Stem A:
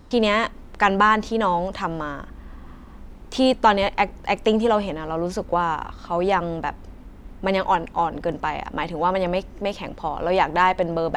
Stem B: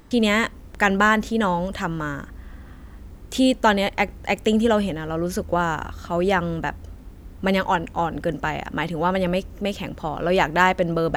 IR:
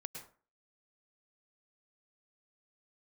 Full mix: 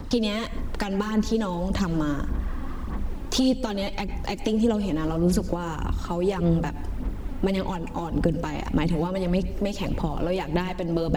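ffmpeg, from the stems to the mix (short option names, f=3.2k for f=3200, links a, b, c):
-filter_complex "[0:a]acompressor=threshold=-24dB:ratio=6,aphaser=in_gain=1:out_gain=1:delay=3.7:decay=0.56:speed=1.7:type=sinusoidal,volume=2.5dB,asplit=2[a][b];[b]volume=-4.5dB[c];[1:a]acompressor=threshold=-25dB:ratio=6,volume=-2.5dB[d];[2:a]atrim=start_sample=2205[e];[c][e]afir=irnorm=-1:irlink=0[f];[a][d][f]amix=inputs=3:normalize=0,acrossover=split=370|3000[g][h][i];[h]acompressor=threshold=-34dB:ratio=6[j];[g][j][i]amix=inputs=3:normalize=0"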